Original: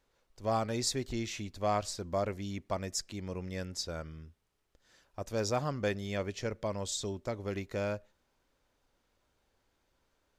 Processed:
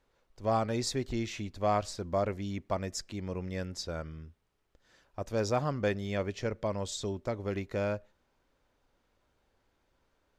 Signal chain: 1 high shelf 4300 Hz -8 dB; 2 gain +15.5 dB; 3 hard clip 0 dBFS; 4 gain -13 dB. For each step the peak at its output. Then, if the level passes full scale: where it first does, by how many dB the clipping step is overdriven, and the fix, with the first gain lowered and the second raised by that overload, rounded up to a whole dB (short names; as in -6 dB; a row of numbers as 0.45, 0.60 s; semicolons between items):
-18.0, -2.5, -2.5, -15.5 dBFS; no overload